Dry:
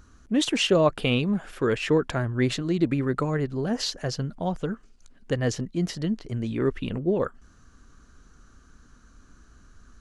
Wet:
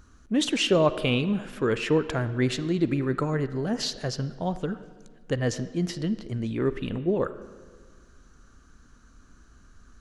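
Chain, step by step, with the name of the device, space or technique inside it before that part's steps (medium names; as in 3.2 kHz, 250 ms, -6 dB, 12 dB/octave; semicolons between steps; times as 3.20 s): filtered reverb send (on a send: high-pass 210 Hz + low-pass 4.4 kHz 12 dB/octave + reverberation RT60 1.6 s, pre-delay 39 ms, DRR 13 dB); on the sum: trim -1 dB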